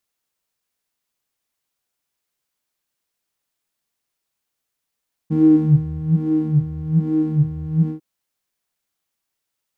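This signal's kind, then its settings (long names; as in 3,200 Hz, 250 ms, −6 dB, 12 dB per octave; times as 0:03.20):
subtractive patch with filter wobble D#3, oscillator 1 square, oscillator 2 triangle, interval +12 semitones, oscillator 2 level 0 dB, noise −7 dB, filter bandpass, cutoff 140 Hz, Q 7.4, filter envelope 0.5 octaves, attack 23 ms, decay 0.75 s, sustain −5.5 dB, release 0.12 s, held 2.58 s, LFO 1.2 Hz, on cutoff 0.9 octaves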